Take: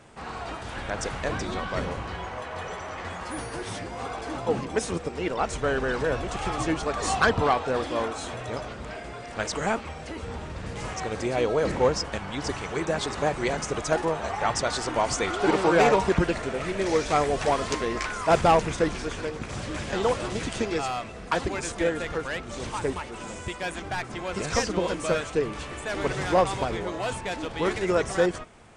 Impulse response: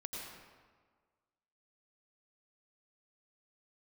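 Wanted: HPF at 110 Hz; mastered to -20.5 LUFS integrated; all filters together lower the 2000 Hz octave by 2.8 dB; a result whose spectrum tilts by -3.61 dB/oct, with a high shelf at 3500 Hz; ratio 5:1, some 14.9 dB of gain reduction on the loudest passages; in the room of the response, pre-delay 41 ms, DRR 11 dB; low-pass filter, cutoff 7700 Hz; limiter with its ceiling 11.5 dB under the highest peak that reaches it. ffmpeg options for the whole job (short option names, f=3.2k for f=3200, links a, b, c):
-filter_complex "[0:a]highpass=110,lowpass=7.7k,equalizer=f=2k:t=o:g=-6,highshelf=f=3.5k:g=8,acompressor=threshold=-33dB:ratio=5,alimiter=level_in=3.5dB:limit=-24dB:level=0:latency=1,volume=-3.5dB,asplit=2[a][b];[1:a]atrim=start_sample=2205,adelay=41[c];[b][c]afir=irnorm=-1:irlink=0,volume=-10.5dB[d];[a][d]amix=inputs=2:normalize=0,volume=17dB"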